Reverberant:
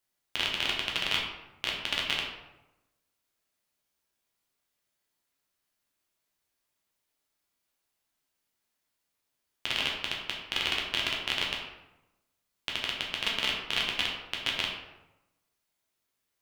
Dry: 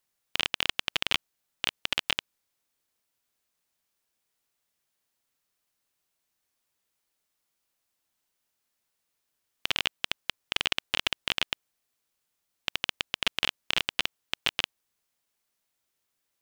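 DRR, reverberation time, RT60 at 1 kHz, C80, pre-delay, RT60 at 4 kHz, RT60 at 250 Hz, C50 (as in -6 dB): -2.5 dB, 0.95 s, 0.95 s, 6.0 dB, 7 ms, 0.55 s, 1.1 s, 3.5 dB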